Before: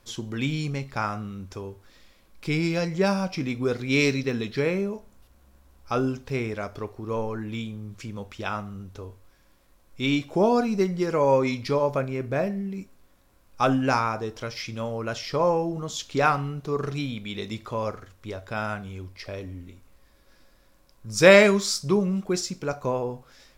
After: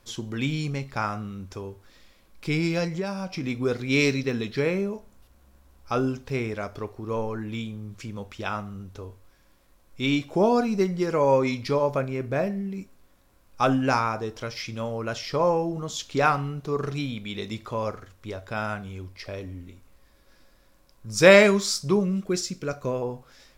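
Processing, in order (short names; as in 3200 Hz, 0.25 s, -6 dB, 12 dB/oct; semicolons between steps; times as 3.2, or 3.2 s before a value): 2.87–3.44 compressor 5:1, threshold -27 dBFS, peak gain reduction 9 dB; 22.05–23.02 bell 850 Hz -11.5 dB 0.44 oct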